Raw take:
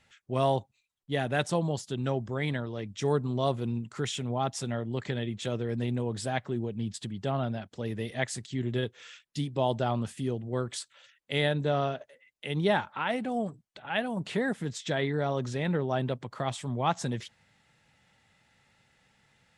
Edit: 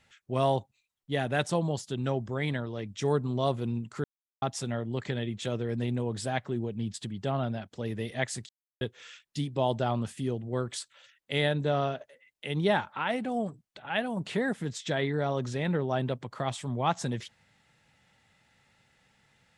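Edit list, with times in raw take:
4.04–4.42 mute
8.49–8.81 mute

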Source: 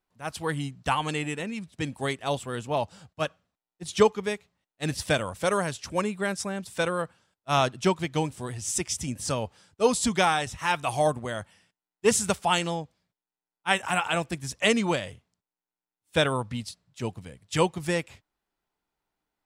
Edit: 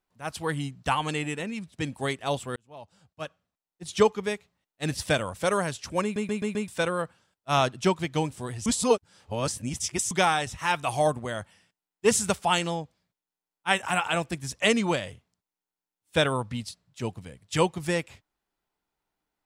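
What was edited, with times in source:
2.56–4.18 fade in
6.03 stutter in place 0.13 s, 5 plays
8.66–10.11 reverse

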